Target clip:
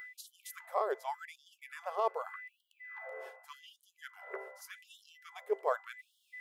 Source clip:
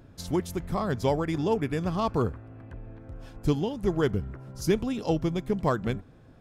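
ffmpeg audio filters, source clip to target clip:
-af "equalizer=f=4.8k:w=0.46:g=-14,aeval=exprs='val(0)+0.00126*sin(2*PI*2000*n/s)':c=same,areverse,acompressor=threshold=-41dB:ratio=6,areverse,afftfilt=real='re*gte(b*sr/1024,360*pow(2900/360,0.5+0.5*sin(2*PI*0.85*pts/sr)))':imag='im*gte(b*sr/1024,360*pow(2900/360,0.5+0.5*sin(2*PI*0.85*pts/sr)))':win_size=1024:overlap=0.75,volume=14.5dB"

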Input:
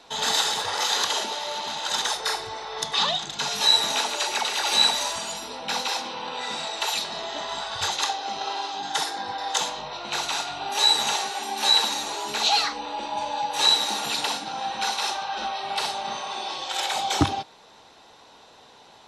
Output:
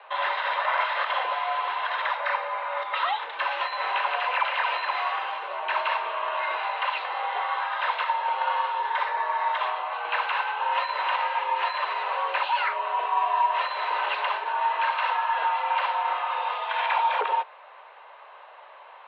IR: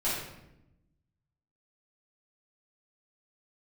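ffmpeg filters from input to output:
-af "alimiter=limit=-17dB:level=0:latency=1:release=82,highpass=f=380:t=q:w=0.5412,highpass=f=380:t=q:w=1.307,lowpass=f=2.6k:t=q:w=0.5176,lowpass=f=2.6k:t=q:w=0.7071,lowpass=f=2.6k:t=q:w=1.932,afreqshift=130,volume=5.5dB"

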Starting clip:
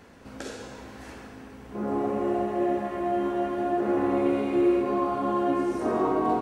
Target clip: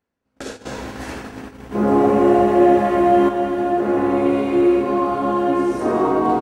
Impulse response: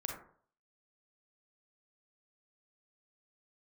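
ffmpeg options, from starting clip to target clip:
-filter_complex "[0:a]asettb=1/sr,asplit=3[a][b][c];[a]atrim=end=0.654[d];[b]atrim=start=0.65:end=3.29,asetpts=PTS-STARTPTS,afade=t=in:d=0.004:c=qsin,afade=t=out:st=2.636:d=0.004:c=qsin,acontrast=48[e];[c]atrim=start=3.286[f];[d][e]acrossfade=d=0.004:c1=hsin:c2=qsin[g];[g][f]acrossfade=d=0.004:c1=qsin:c2=hsin,aecho=1:1:266:0.178,acontrast=24,agate=range=-36dB:threshold=-32dB:ratio=16:detection=peak,volume=2dB"

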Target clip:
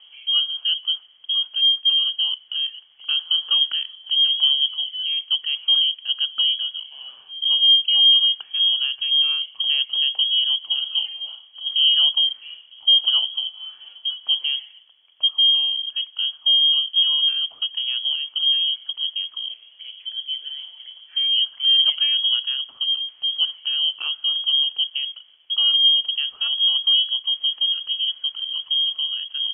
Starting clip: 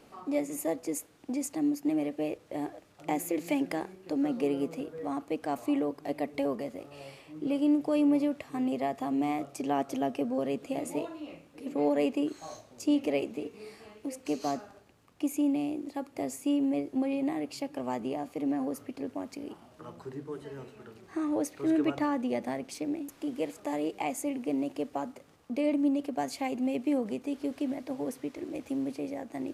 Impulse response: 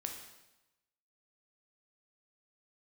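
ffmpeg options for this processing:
-af "equalizer=f=125:t=o:w=1:g=-7,equalizer=f=250:t=o:w=1:g=11,equalizer=f=500:t=o:w=1:g=12,equalizer=f=1k:t=o:w=1:g=-6,lowpass=f=3k:t=q:w=0.5098,lowpass=f=3k:t=q:w=0.6013,lowpass=f=3k:t=q:w=0.9,lowpass=f=3k:t=q:w=2.563,afreqshift=-3500,volume=-1dB"

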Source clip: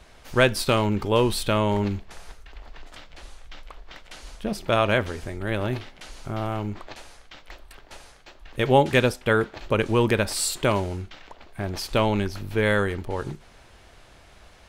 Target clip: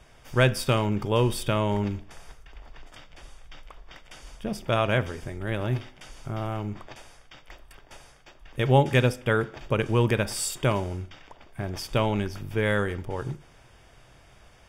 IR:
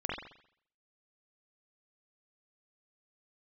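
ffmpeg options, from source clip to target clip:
-filter_complex "[0:a]asuperstop=centerf=4100:order=12:qfactor=8,equalizer=f=130:t=o:w=0.32:g=9.5,asplit=2[a][b];[1:a]atrim=start_sample=2205[c];[b][c]afir=irnorm=-1:irlink=0,volume=-22.5dB[d];[a][d]amix=inputs=2:normalize=0,volume=-4dB"

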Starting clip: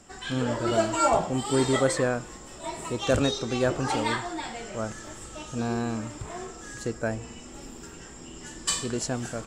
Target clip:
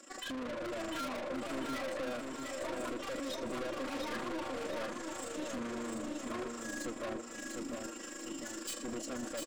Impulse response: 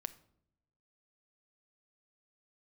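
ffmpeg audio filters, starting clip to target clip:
-filter_complex "[0:a]highpass=f=270:w=0.5412,highpass=f=270:w=1.3066,afwtdn=0.0251,aecho=1:1:3.6:0.92,acompressor=threshold=-43dB:ratio=3,tremolo=f=26:d=0.71,aeval=exprs='(tanh(562*val(0)+0.15)-tanh(0.15))/562':c=same,asuperstop=centerf=840:order=4:qfactor=6.6,asplit=2[a][b];[b]aecho=0:1:699|1398|2097|2796|3495|4194:0.631|0.284|0.128|0.0575|0.0259|0.0116[c];[a][c]amix=inputs=2:normalize=0,volume=17dB"

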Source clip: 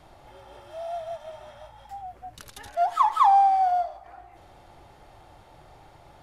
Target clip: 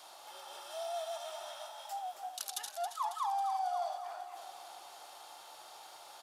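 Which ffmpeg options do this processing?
-af "highpass=1.5k,equalizer=f=2k:w=1.3:g=-14.5,areverse,acompressor=threshold=-48dB:ratio=5,areverse,aecho=1:1:273|546|819|1092|1365|1638|1911:0.335|0.194|0.113|0.0654|0.0379|0.022|0.0128,volume=12.5dB"

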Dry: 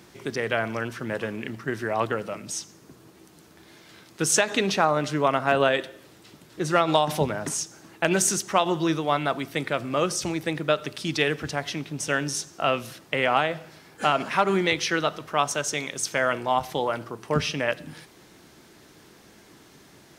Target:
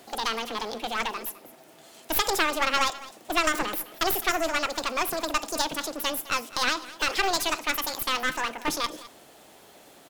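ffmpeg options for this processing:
-af "asetrate=88200,aresample=44100,aeval=exprs='clip(val(0),-1,0.0316)':c=same,aecho=1:1:208:0.126"

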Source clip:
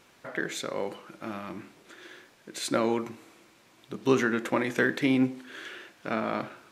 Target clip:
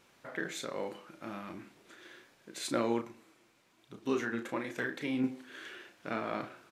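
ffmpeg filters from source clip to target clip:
-filter_complex "[0:a]asettb=1/sr,asplit=3[a][b][c];[a]atrim=end=3.014[d];[b]atrim=start=3.01:end=5.24,asetpts=PTS-STARTPTS,afade=t=in:d=0.004:c=qsin,afade=t=out:st=2.226:d=0.004:c=qsin,flanger=delay=0.8:depth=8.5:regen=46:speed=1.1:shape=triangular[e];[c]atrim=start=5.236[f];[d][e]acrossfade=d=0.004:c1=hsin:c2=qsin[g];[g][f]acrossfade=d=0.004:c1=qsin:c2=hsin,asplit=2[h][i];[i]adelay=34,volume=-7.5dB[j];[h][j]amix=inputs=2:normalize=0,volume=-6dB"

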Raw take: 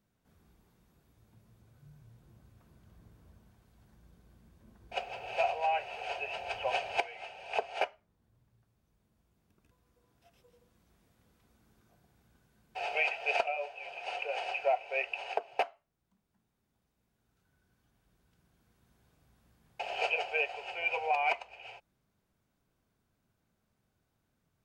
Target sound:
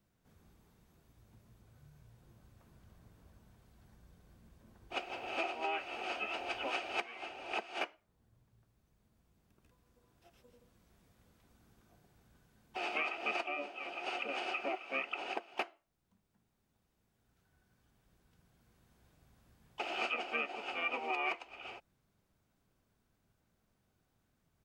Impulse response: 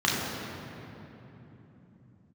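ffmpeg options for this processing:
-filter_complex "[0:a]acrossover=split=460|1300[a][b][c];[a]acompressor=threshold=-59dB:ratio=4[d];[b]acompressor=threshold=-42dB:ratio=4[e];[c]acompressor=threshold=-36dB:ratio=4[f];[d][e][f]amix=inputs=3:normalize=0,asplit=4[g][h][i][j];[h]asetrate=22050,aresample=44100,atempo=2,volume=-7dB[k];[i]asetrate=35002,aresample=44100,atempo=1.25992,volume=-17dB[l];[j]asetrate=52444,aresample=44100,atempo=0.840896,volume=-15dB[m];[g][k][l][m]amix=inputs=4:normalize=0"

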